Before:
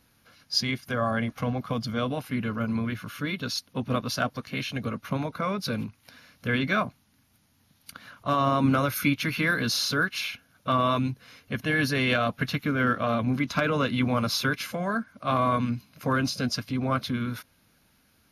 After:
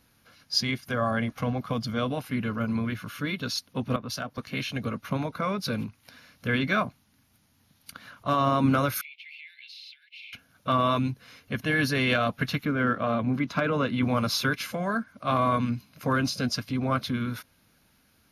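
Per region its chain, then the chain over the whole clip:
0:03.96–0:04.38: downward compressor 4 to 1, threshold −30 dBFS + multiband upward and downward expander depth 100%
0:09.01–0:10.33: Butterworth high-pass 2,200 Hz 72 dB per octave + high-frequency loss of the air 450 metres + downward compressor, threshold −41 dBFS
0:12.65–0:14.03: high-pass filter 100 Hz + high-shelf EQ 3,000 Hz −8.5 dB
whole clip: no processing

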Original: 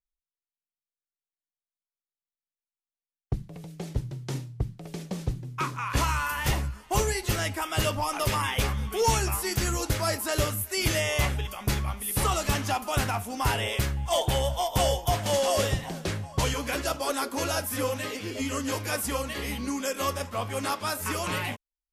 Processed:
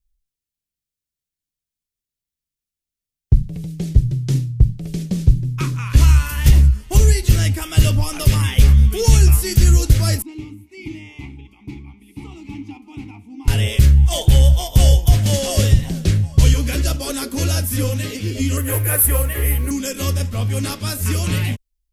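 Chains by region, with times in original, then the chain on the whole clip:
0:10.22–0:13.48: formant filter u + mains-hum notches 60/120/180/240/300/360/420/480/540 Hz
0:18.57–0:19.71: drawn EQ curve 130 Hz 0 dB, 180 Hz −18 dB, 390 Hz +4 dB, 1,800 Hz +6 dB, 3,000 Hz −4 dB, 5,000 Hz −21 dB, 11,000 Hz +13 dB + noise that follows the level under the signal 24 dB
whole clip: guitar amp tone stack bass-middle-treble 10-0-1; boost into a limiter +29.5 dB; level −1 dB

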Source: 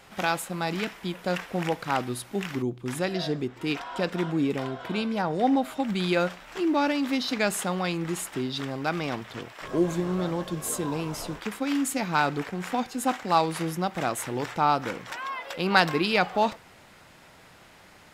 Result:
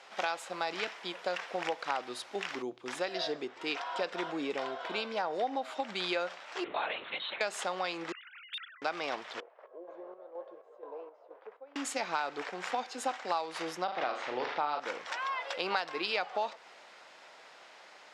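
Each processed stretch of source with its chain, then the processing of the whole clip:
0:06.64–0:07.41: high-pass filter 1,300 Hz 6 dB per octave + linear-prediction vocoder at 8 kHz whisper
0:08.12–0:08.82: three sine waves on the formant tracks + elliptic high-pass filter 1,400 Hz, stop band 70 dB + hard clipping −34.5 dBFS
0:09.40–0:11.76: four-pole ladder band-pass 570 Hz, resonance 50% + square-wave tremolo 2.1 Hz, depth 60%, duty 55%
0:13.84–0:14.80: low-pass filter 4,600 Hz 24 dB per octave + flutter between parallel walls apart 6.9 metres, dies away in 0.39 s
whole clip: Chebyshev band-pass filter 550–5,600 Hz, order 2; downward compressor 6 to 1, threshold −29 dBFS

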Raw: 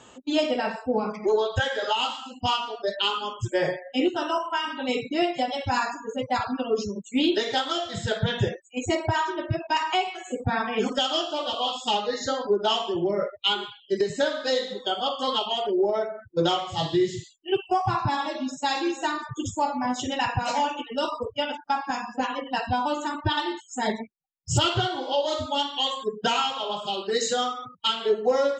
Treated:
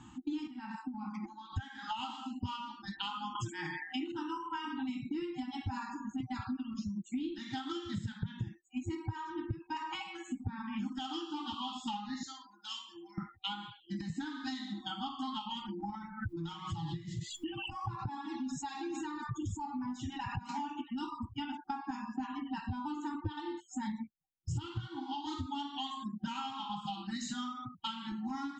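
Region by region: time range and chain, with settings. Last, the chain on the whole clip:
0:00.47–0:01.53: high-pass filter 220 Hz 24 dB per octave + downward compressor 12 to 1, threshold −32 dBFS
0:03.35–0:04.12: meter weighting curve A + envelope flattener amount 70%
0:06.20–0:08.14: parametric band 910 Hz −7.5 dB 0.48 octaves + multiband upward and downward compressor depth 40%
0:12.23–0:13.18: first difference + comb filter 2.9 ms, depth 74%
0:15.95–0:20.49: flanger 1.3 Hz, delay 0.6 ms, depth 1.5 ms, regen −27% + tuned comb filter 420 Hz, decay 0.17 s, mix 40% + background raised ahead of every attack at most 24 dB per second
whole clip: brick-wall band-stop 350–760 Hz; tilt shelving filter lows +8 dB, about 700 Hz; downward compressor 6 to 1, threshold −33 dBFS; level −2.5 dB

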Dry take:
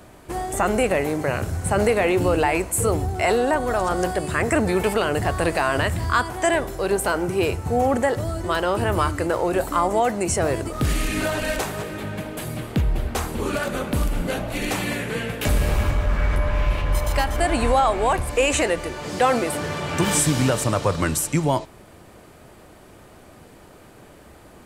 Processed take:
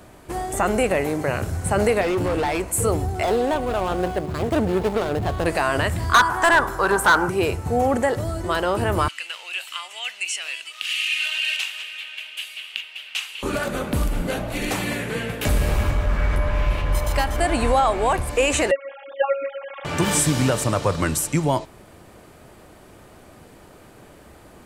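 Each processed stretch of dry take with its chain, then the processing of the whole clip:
0:02.01–0:02.68: high-shelf EQ 5,100 Hz −4.5 dB + hard clipping −19 dBFS
0:03.23–0:05.46: running median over 25 samples + notch filter 5,900 Hz, Q 27
0:06.14–0:07.30: flat-topped bell 1,200 Hz +13.5 dB 1.2 octaves + hard clipping −10 dBFS
0:09.08–0:13.43: high-pass with resonance 2,800 Hz, resonance Q 6.4 + high-shelf EQ 8,700 Hz −11.5 dB
0:18.71–0:19.85: three sine waves on the formant tracks + phases set to zero 275 Hz
whole clip: no processing

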